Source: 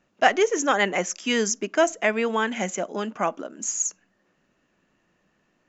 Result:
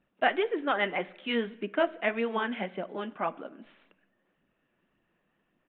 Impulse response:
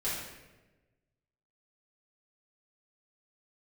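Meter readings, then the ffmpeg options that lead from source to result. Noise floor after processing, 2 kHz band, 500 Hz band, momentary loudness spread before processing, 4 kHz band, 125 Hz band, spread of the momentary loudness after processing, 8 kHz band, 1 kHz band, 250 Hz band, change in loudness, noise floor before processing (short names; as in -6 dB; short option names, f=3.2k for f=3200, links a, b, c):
-76 dBFS, -6.5 dB, -6.5 dB, 7 LU, -7.5 dB, -7.5 dB, 9 LU, n/a, -7.0 dB, -6.0 dB, -6.5 dB, -70 dBFS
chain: -filter_complex "[0:a]flanger=delay=0.2:depth=8.2:regen=42:speed=1.8:shape=sinusoidal,asplit=2[a][b];[1:a]atrim=start_sample=2205[c];[b][c]afir=irnorm=-1:irlink=0,volume=-23dB[d];[a][d]amix=inputs=2:normalize=0,aresample=8000,aresample=44100,volume=-3dB"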